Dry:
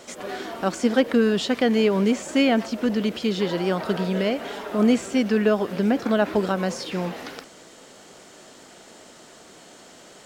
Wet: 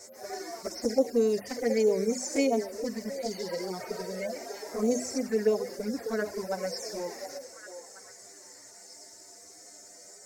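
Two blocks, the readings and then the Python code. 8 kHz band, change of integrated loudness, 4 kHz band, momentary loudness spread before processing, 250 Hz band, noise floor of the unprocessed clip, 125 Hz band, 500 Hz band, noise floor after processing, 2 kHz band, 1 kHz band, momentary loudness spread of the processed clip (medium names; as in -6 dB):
+1.0 dB, -7.5 dB, -9.5 dB, 10 LU, -11.0 dB, -48 dBFS, -14.5 dB, -5.0 dB, -51 dBFS, -11.5 dB, -10.0 dB, 22 LU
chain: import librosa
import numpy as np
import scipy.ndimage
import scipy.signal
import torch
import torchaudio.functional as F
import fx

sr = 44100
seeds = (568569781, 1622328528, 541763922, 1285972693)

y = fx.hpss_only(x, sr, part='harmonic')
y = fx.vibrato(y, sr, rate_hz=6.4, depth_cents=15.0)
y = fx.notch(y, sr, hz=640.0, q=15.0)
y = fx.dynamic_eq(y, sr, hz=5700.0, q=0.89, threshold_db=-52.0, ratio=4.0, max_db=4)
y = fx.env_flanger(y, sr, rest_ms=11.0, full_db=-15.5)
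y = fx.curve_eq(y, sr, hz=(110.0, 160.0, 410.0, 680.0, 1300.0, 2100.0, 3100.0, 5300.0, 9200.0), db=(0, -14, -2, -1, -9, 0, -21, 11, 8))
y = fx.dmg_crackle(y, sr, seeds[0], per_s=110.0, level_db=-58.0)
y = fx.hum_notches(y, sr, base_hz=50, count=5)
y = fx.echo_stepped(y, sr, ms=720, hz=590.0, octaves=1.4, feedback_pct=70, wet_db=-8)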